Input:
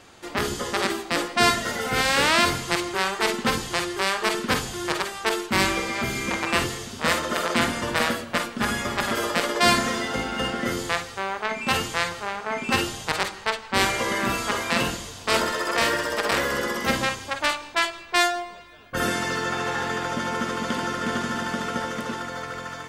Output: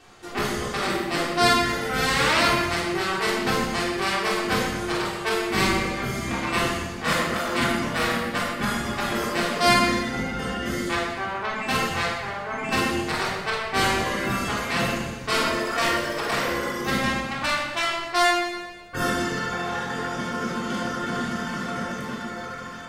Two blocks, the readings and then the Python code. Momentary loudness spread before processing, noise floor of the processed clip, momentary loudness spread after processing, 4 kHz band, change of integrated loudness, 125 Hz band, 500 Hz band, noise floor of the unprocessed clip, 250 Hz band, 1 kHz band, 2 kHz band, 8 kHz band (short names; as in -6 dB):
8 LU, -35 dBFS, 8 LU, -1.0 dB, 0.0 dB, +2.5 dB, 0.0 dB, -40 dBFS, +1.5 dB, +0.5 dB, -0.5 dB, -2.5 dB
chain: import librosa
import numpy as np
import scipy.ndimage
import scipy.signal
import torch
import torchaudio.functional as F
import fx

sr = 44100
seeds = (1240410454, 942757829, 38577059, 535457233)

p1 = fx.dereverb_blind(x, sr, rt60_s=1.6)
p2 = p1 + fx.echo_feedback(p1, sr, ms=123, feedback_pct=54, wet_db=-12.0, dry=0)
p3 = fx.room_shoebox(p2, sr, seeds[0], volume_m3=960.0, walls='mixed', distance_m=3.5)
y = p3 * 10.0 ** (-6.0 / 20.0)